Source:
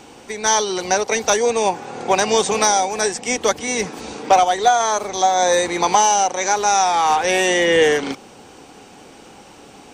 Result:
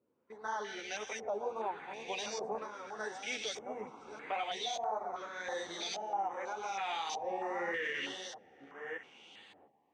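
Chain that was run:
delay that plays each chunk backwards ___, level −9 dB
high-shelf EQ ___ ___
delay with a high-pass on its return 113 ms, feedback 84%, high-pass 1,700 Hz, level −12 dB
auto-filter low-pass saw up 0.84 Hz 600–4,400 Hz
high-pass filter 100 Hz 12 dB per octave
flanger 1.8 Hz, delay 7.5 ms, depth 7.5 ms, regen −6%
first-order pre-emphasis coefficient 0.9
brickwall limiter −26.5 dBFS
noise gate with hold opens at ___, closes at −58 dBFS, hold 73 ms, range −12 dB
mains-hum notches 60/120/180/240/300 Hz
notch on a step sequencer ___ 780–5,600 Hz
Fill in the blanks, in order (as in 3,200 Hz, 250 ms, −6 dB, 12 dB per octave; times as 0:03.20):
598 ms, 2,500 Hz, −7 dB, −46 dBFS, 3.1 Hz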